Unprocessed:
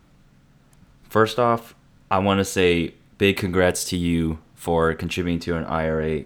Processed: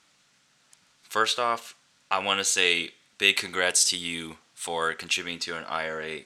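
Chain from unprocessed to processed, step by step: frequency weighting ITU-R 468; trim -5 dB

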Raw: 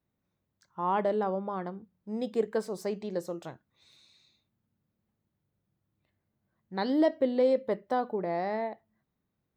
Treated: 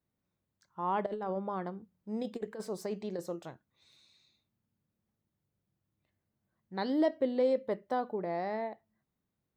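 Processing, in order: 1.06–3.36 s: compressor with a negative ratio -31 dBFS, ratio -0.5; trim -3.5 dB

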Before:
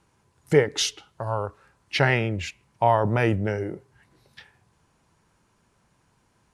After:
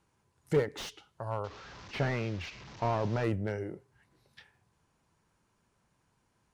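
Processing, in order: 1.44–3.24 s: one-bit delta coder 32 kbps, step -35 dBFS; slew-rate limiter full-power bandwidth 100 Hz; trim -8 dB

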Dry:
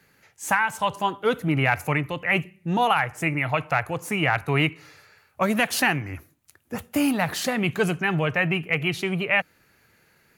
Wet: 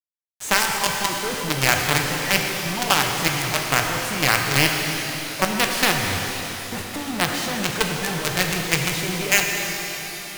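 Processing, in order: median filter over 3 samples; companded quantiser 2-bit; pitch-shifted reverb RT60 3.7 s, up +12 st, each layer -8 dB, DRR 1.5 dB; trim -3.5 dB

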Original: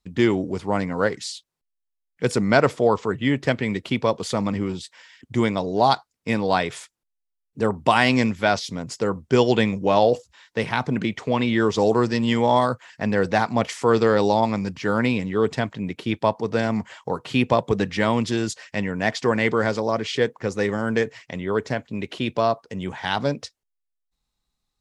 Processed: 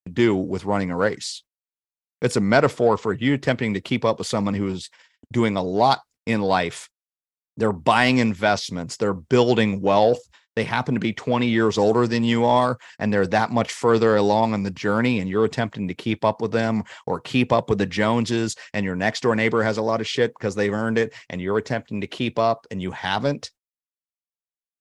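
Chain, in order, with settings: gate -46 dBFS, range -44 dB; in parallel at -9 dB: saturation -17 dBFS, distortion -10 dB; on the sum: trim -1 dB

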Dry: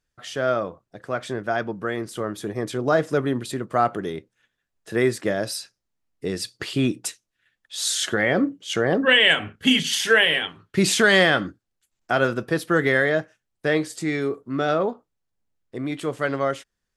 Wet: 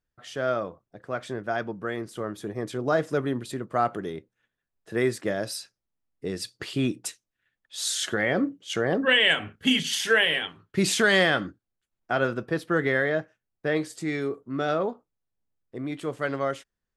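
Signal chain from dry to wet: 11.45–13.75 s: treble shelf 7.6 kHz -> 4.3 kHz -9.5 dB; tape noise reduction on one side only decoder only; trim -4 dB

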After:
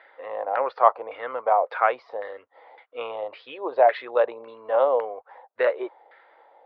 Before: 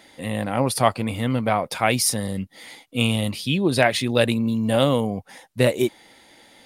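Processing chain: LFO low-pass saw down 1.8 Hz 740–1700 Hz; elliptic band-pass 460–4300 Hz, stop band 40 dB; trim -2 dB

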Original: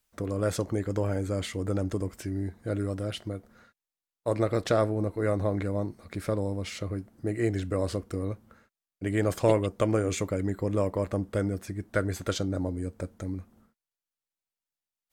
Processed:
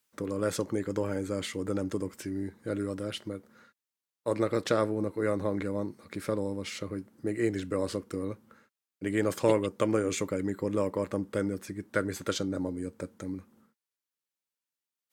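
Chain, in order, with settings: high-pass 160 Hz 12 dB/octave; peaking EQ 690 Hz -12 dB 0.21 oct

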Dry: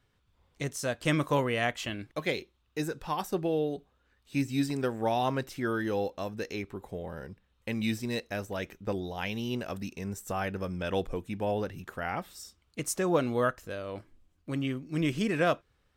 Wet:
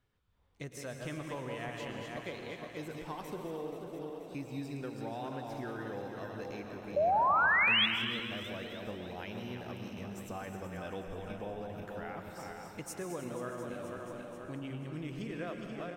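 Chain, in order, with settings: backward echo that repeats 241 ms, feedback 66%, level -6 dB; peaking EQ 8.3 kHz -4 dB 2.6 oct; compression 3:1, threshold -33 dBFS, peak gain reduction 9.5 dB; painted sound rise, 6.96–7.86 s, 560–3500 Hz -21 dBFS; frequency-shifting echo 313 ms, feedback 51%, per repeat +110 Hz, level -15 dB; plate-style reverb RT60 1.7 s, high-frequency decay 0.95×, pre-delay 95 ms, DRR 6.5 dB; trim -6.5 dB

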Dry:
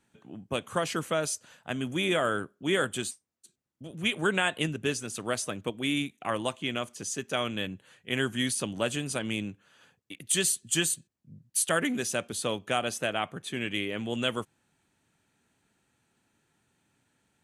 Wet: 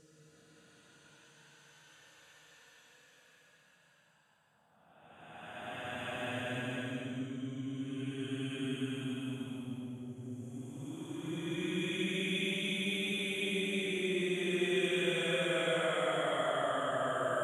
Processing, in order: de-hum 77.22 Hz, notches 7; Paulstretch 21×, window 0.10 s, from 1.41 s; trim -7 dB

